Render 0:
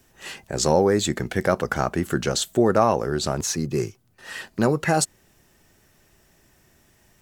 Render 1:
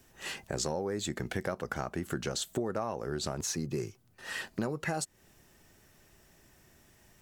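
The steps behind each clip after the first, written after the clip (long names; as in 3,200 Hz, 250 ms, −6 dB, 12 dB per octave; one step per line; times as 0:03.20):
downward compressor 6 to 1, threshold −28 dBFS, peak gain reduction 14.5 dB
level −2.5 dB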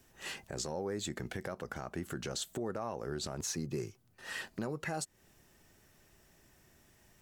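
brickwall limiter −23.5 dBFS, peak gain reduction 6 dB
level −3 dB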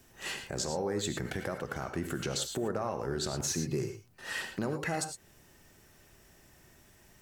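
reverb whose tail is shaped and stops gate 130 ms rising, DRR 6.5 dB
level +4 dB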